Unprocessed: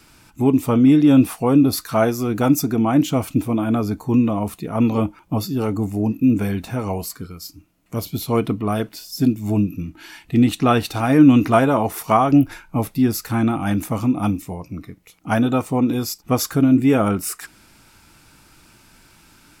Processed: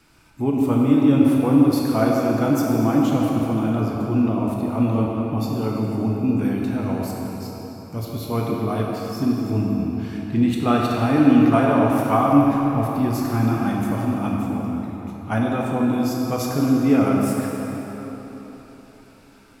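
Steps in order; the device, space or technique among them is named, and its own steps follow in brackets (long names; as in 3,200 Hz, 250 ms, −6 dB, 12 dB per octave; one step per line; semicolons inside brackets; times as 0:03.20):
swimming-pool hall (convolution reverb RT60 4.1 s, pre-delay 13 ms, DRR −2.5 dB; high-shelf EQ 4,300 Hz −6 dB)
level −5.5 dB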